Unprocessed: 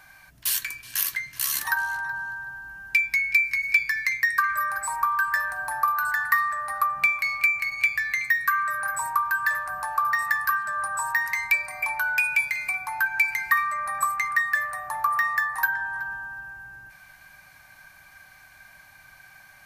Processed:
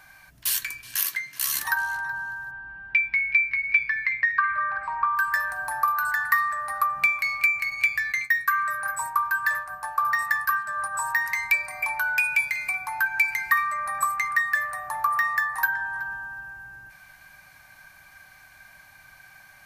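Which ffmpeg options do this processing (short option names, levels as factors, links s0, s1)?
-filter_complex "[0:a]asettb=1/sr,asplit=3[s0][s1][s2];[s0]atrim=end=0.964[s3];[s1]atrim=start=0.96:end=1.42,asetpts=PTS-STARTPTS,afade=t=in:d=0.004:c=qsin,afade=t=out:st=0.456:d=0.004:c=qsin,highpass=190[s4];[s2]atrim=start=1.416[s5];[s3][s4]acrossfade=d=0.004:c1=hsin:c2=qsin[s6];[s6][s5]acrossfade=d=0.004:c1=qsin:c2=hsin,asplit=3[s7][s8][s9];[s7]afade=t=out:st=2.5:d=0.02[s10];[s8]lowpass=f=3200:w=0.5412,lowpass=f=3200:w=1.3066,afade=t=in:st=2.5:d=0.02,afade=t=out:st=5.15:d=0.02[s11];[s9]afade=t=in:st=5.15:d=0.02[s12];[s10][s11][s12]amix=inputs=3:normalize=0,asplit=3[s13][s14][s15];[s13]afade=t=out:st=8.11:d=0.02[s16];[s14]agate=range=0.0224:threshold=0.0398:ratio=3:release=100:detection=peak,afade=t=in:st=8.11:d=0.02,afade=t=out:st=10.93:d=0.02[s17];[s15]afade=t=in:st=10.93:d=0.02[s18];[s16][s17][s18]amix=inputs=3:normalize=0"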